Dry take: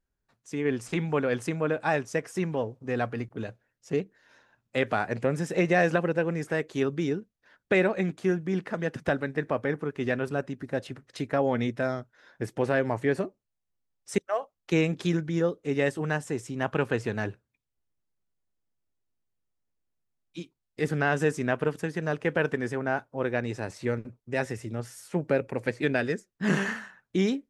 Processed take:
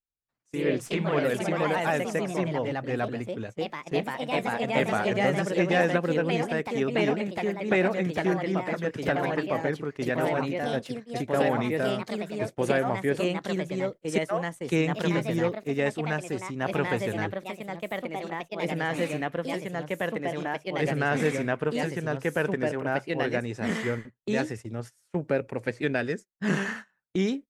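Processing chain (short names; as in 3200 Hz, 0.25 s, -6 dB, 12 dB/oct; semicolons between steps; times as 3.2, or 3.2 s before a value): echoes that change speed 83 ms, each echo +2 st, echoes 3; gate -37 dBFS, range -19 dB; gain -1 dB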